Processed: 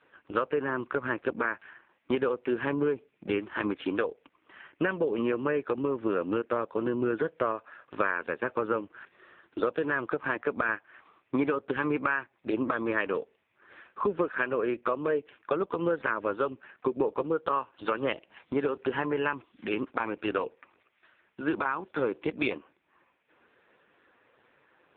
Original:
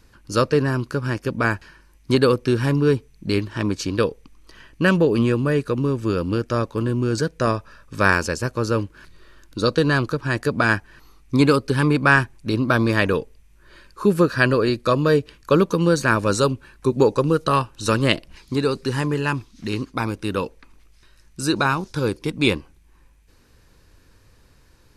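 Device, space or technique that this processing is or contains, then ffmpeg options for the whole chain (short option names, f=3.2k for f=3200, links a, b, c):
voicemail: -filter_complex "[0:a]asettb=1/sr,asplit=3[a][b][c];[a]atrim=end=11.984[d];[b]atrim=start=11.98:end=12.48,asetpts=PTS-STARTPTS,afade=t=in:d=0.004:c=qsin,afade=t=out:st=0.496:d=0.004:c=qsin,lowpass=f=8.3k:w=0.5412,lowpass=f=8.3k:w=1.3066[e];[c]atrim=start=12.476[f];[d][e]acrossfade=d=0.004:c1=hsin:c2=qsin[g];[g][f]acrossfade=d=0.004:c1=qsin:c2=hsin,highpass=410,lowpass=2.8k,acompressor=threshold=-27dB:ratio=10,volume=4dB" -ar 8000 -c:a libopencore_amrnb -b:a 5150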